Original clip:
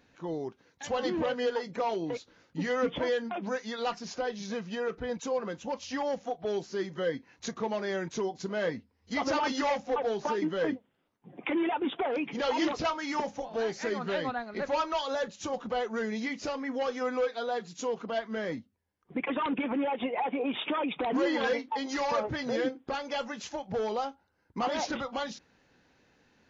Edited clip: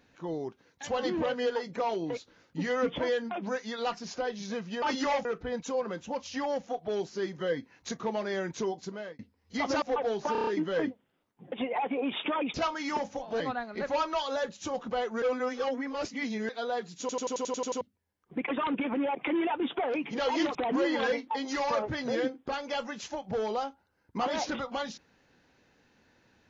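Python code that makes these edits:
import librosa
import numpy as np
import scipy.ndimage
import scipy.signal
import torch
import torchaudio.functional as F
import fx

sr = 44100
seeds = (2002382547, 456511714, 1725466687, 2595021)

y = fx.edit(x, sr, fx.fade_out_span(start_s=8.31, length_s=0.45),
    fx.move(start_s=9.39, length_s=0.43, to_s=4.82),
    fx.stutter(start_s=10.32, slice_s=0.03, count=6),
    fx.swap(start_s=11.37, length_s=1.4, other_s=19.94, other_length_s=1.02),
    fx.cut(start_s=13.63, length_s=0.56),
    fx.reverse_span(start_s=16.01, length_s=1.27),
    fx.stutter_over(start_s=17.79, slice_s=0.09, count=9), tone=tone)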